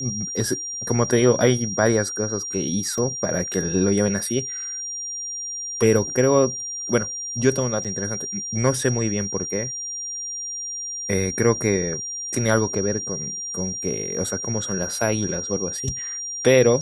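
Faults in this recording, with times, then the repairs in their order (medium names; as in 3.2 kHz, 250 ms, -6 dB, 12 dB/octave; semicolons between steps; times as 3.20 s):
whine 5.7 kHz -28 dBFS
2.98 s: dropout 2.3 ms
7.84–7.85 s: dropout 6.8 ms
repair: band-stop 5.7 kHz, Q 30; interpolate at 2.98 s, 2.3 ms; interpolate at 7.84 s, 6.8 ms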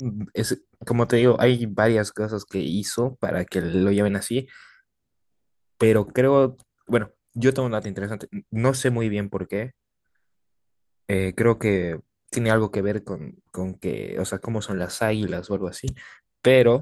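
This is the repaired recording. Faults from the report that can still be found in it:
nothing left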